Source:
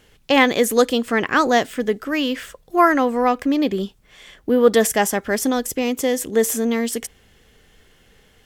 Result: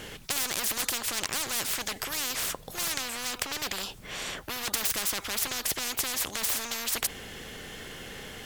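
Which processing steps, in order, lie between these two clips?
hard clipper -17.5 dBFS, distortion -7 dB; spectrum-flattening compressor 10:1; trim +7.5 dB

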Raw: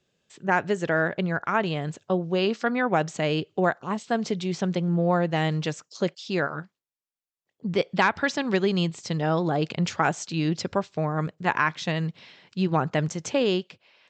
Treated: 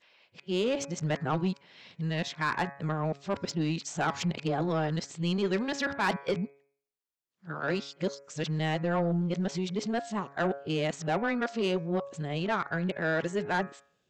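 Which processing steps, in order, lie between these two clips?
reverse the whole clip; de-hum 139.6 Hz, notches 18; saturation -18 dBFS, distortion -15 dB; trim -3 dB

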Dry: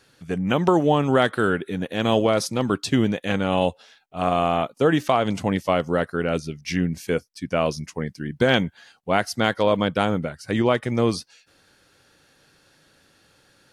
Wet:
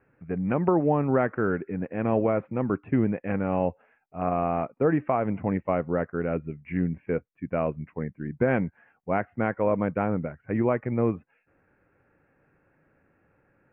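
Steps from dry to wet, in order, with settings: steep low-pass 2.5 kHz 72 dB/octave; tilt shelf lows +4 dB, about 1.2 kHz; trim -7 dB

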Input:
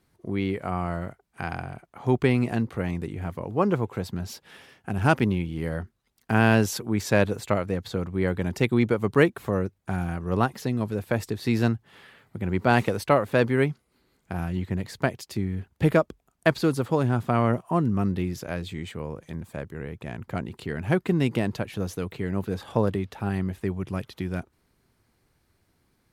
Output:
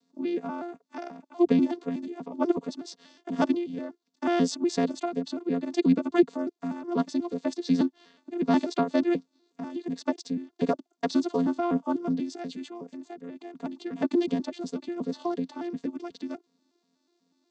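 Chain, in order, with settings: vocoder on a broken chord major triad, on A#3, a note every 182 ms; granular stretch 0.67×, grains 23 ms; resonant high shelf 3.1 kHz +11 dB, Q 1.5

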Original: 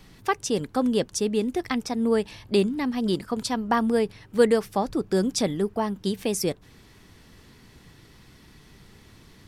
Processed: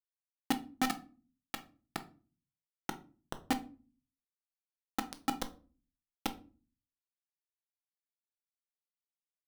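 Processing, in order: level-controlled noise filter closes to 370 Hz, open at -20.5 dBFS; dynamic bell 730 Hz, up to -6 dB, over -38 dBFS, Q 0.89; compression 16:1, threshold -34 dBFS, peak gain reduction 19 dB; vowel filter i; 0.71–2.90 s: phase dispersion lows, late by 67 ms, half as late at 440 Hz; bit crusher 6-bit; simulated room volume 240 m³, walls furnished, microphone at 0.71 m; trim +9.5 dB

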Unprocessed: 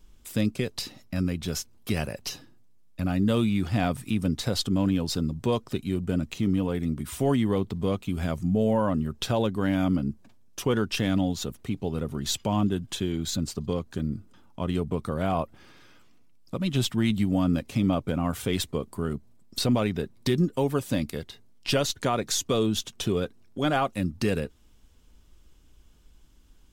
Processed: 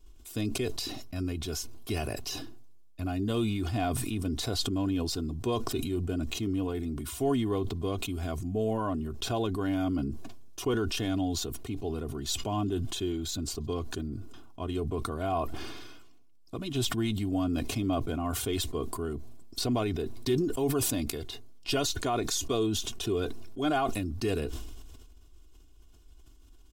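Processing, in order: peaking EQ 1.9 kHz -6.5 dB 0.58 oct; comb 2.8 ms, depth 69%; decay stretcher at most 30 dB/s; trim -5.5 dB

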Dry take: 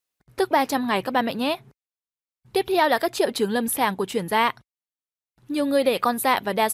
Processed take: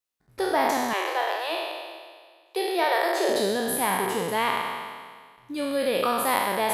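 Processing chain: spectral sustain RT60 1.76 s; 0.93–3.29 s: Chebyshev high-pass 320 Hz, order 10; trim -7 dB

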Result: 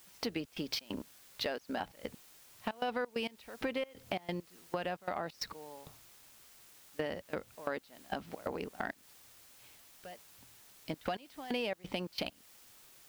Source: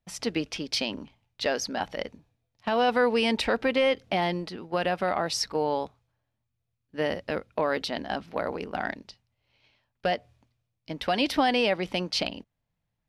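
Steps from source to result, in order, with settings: median filter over 5 samples; trance gate "..xx.xx.x." 133 bpm -24 dB; word length cut 10-bit, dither triangular; compression 4:1, threshold -36 dBFS, peak gain reduction 14 dB; trim +1 dB

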